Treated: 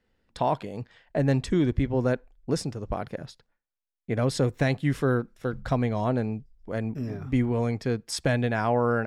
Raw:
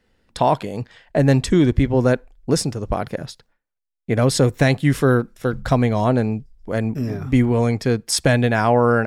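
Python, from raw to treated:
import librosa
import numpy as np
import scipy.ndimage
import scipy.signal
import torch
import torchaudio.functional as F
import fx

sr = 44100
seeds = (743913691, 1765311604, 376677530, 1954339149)

y = fx.high_shelf(x, sr, hz=7100.0, db=-8.5)
y = F.gain(torch.from_numpy(y), -8.0).numpy()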